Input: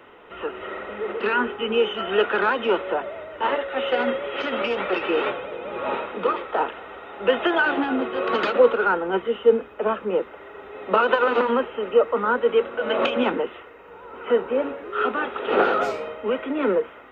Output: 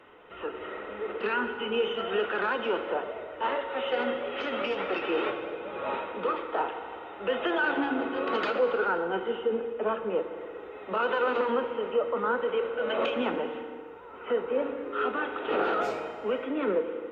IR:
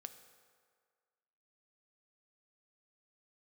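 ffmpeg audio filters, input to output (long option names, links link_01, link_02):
-filter_complex "[0:a]alimiter=limit=-13dB:level=0:latency=1:release=30[link_01];[1:a]atrim=start_sample=2205,afade=type=out:start_time=0.4:duration=0.01,atrim=end_sample=18081,asetrate=27342,aresample=44100[link_02];[link_01][link_02]afir=irnorm=-1:irlink=0,volume=-2.5dB"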